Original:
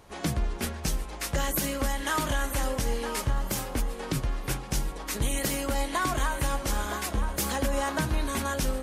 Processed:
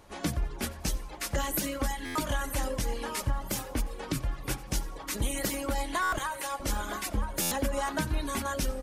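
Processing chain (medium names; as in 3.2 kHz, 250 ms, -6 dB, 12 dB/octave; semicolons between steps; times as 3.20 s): 6.18–6.60 s: high-pass 520 Hz 12 dB/octave; reverb removal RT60 0.79 s; feedback delay 90 ms, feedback 38%, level -20 dB; reverberation RT60 1.1 s, pre-delay 3 ms, DRR 12 dB; buffer glitch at 2.05/6.02/7.41 s, samples 512, times 8; trim -1.5 dB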